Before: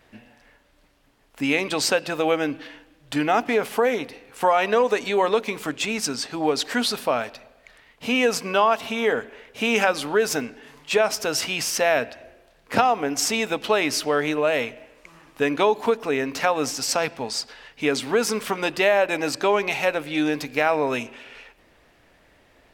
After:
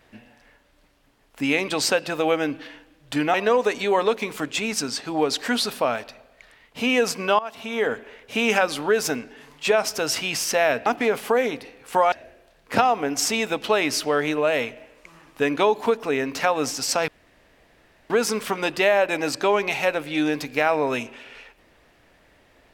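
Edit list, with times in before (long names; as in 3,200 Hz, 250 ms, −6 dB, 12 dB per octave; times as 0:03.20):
0:03.34–0:04.60: move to 0:12.12
0:08.65–0:09.19: fade in, from −18 dB
0:17.08–0:18.10: fill with room tone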